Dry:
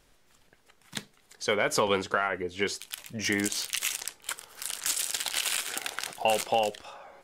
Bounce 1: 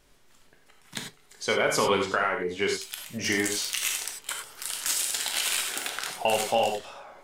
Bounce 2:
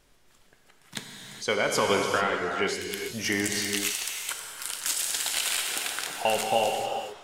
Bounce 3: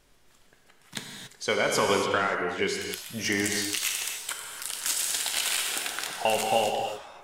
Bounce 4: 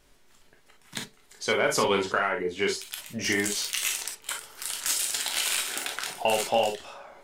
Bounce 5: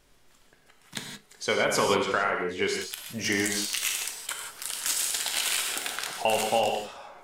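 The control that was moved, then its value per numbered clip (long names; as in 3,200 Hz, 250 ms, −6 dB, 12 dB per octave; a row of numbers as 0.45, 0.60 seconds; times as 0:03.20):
reverb whose tail is shaped and stops, gate: 120, 460, 310, 80, 200 milliseconds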